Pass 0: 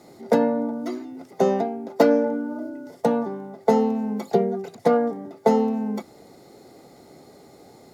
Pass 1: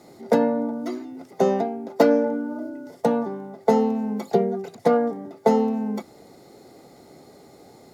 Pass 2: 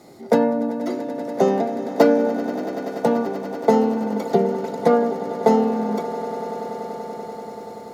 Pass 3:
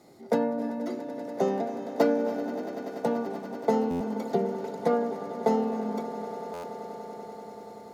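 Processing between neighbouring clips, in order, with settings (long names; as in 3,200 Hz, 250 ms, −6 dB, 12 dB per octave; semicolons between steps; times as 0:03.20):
no processing that can be heard
echo that builds up and dies away 96 ms, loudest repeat 8, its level −16.5 dB; level +2 dB
on a send at −13 dB: convolution reverb RT60 0.85 s, pre-delay 252 ms; on the sum: buffer that repeats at 0:03.90/0:06.53, samples 512, times 8; level −8.5 dB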